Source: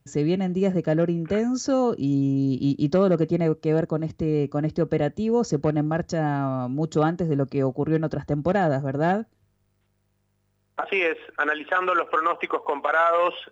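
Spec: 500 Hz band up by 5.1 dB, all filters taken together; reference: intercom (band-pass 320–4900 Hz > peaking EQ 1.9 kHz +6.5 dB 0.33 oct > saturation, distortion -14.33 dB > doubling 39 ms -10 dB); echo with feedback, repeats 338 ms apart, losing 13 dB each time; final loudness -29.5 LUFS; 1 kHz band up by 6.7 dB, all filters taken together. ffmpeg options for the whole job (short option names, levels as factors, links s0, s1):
-filter_complex "[0:a]highpass=320,lowpass=4900,equalizer=f=500:t=o:g=5,equalizer=f=1000:t=o:g=7.5,equalizer=f=1900:t=o:w=0.33:g=6.5,aecho=1:1:338|676|1014:0.224|0.0493|0.0108,asoftclip=threshold=0.237,asplit=2[s0][s1];[s1]adelay=39,volume=0.316[s2];[s0][s2]amix=inputs=2:normalize=0,volume=0.422"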